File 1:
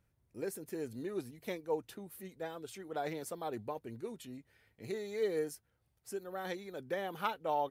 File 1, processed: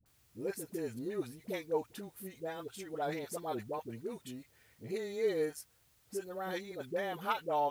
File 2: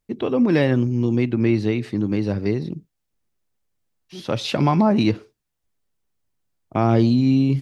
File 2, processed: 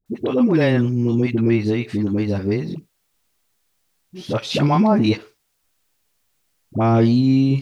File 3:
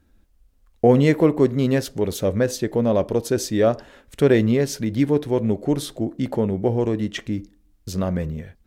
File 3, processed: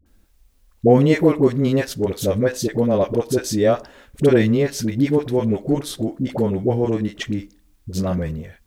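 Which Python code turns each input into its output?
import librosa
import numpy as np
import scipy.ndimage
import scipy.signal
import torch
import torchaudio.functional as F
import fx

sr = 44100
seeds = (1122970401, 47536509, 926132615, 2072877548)

y = fx.quant_dither(x, sr, seeds[0], bits=12, dither='triangular')
y = fx.dispersion(y, sr, late='highs', ms=60.0, hz=600.0)
y = F.gain(torch.from_numpy(y), 1.5).numpy()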